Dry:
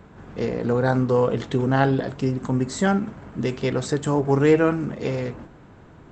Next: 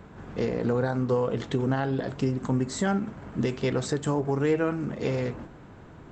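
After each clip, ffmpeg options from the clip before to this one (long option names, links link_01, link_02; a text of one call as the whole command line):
ffmpeg -i in.wav -af "alimiter=limit=-16dB:level=0:latency=1:release=431" out.wav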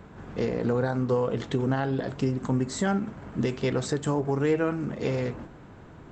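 ffmpeg -i in.wav -af anull out.wav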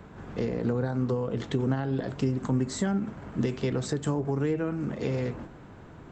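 ffmpeg -i in.wav -filter_complex "[0:a]acrossover=split=340[link_01][link_02];[link_02]acompressor=threshold=-32dB:ratio=6[link_03];[link_01][link_03]amix=inputs=2:normalize=0" out.wav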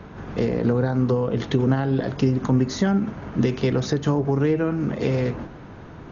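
ffmpeg -i in.wav -af "volume=7dB" -ar 48000 -c:a ac3 -b:a 48k out.ac3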